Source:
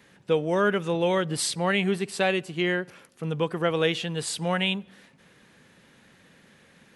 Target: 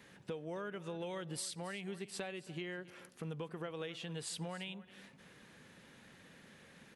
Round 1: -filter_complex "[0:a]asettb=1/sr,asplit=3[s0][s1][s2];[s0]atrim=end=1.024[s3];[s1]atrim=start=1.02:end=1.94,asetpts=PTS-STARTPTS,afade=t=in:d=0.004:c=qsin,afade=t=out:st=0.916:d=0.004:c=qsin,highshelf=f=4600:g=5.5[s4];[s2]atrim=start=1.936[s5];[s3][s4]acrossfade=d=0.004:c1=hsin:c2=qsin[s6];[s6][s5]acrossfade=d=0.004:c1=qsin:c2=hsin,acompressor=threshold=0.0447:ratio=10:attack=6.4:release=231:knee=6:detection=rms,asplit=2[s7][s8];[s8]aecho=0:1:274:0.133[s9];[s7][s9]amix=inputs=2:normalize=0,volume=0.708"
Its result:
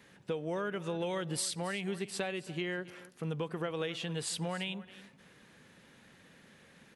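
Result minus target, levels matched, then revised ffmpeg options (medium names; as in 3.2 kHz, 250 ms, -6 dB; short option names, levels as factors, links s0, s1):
compression: peak gain reduction -7 dB
-filter_complex "[0:a]asettb=1/sr,asplit=3[s0][s1][s2];[s0]atrim=end=1.024[s3];[s1]atrim=start=1.02:end=1.94,asetpts=PTS-STARTPTS,afade=t=in:d=0.004:c=qsin,afade=t=out:st=0.916:d=0.004:c=qsin,highshelf=f=4600:g=5.5[s4];[s2]atrim=start=1.936[s5];[s3][s4]acrossfade=d=0.004:c1=hsin:c2=qsin[s6];[s6][s5]acrossfade=d=0.004:c1=qsin:c2=hsin,acompressor=threshold=0.0178:ratio=10:attack=6.4:release=231:knee=6:detection=rms,asplit=2[s7][s8];[s8]aecho=0:1:274:0.133[s9];[s7][s9]amix=inputs=2:normalize=0,volume=0.708"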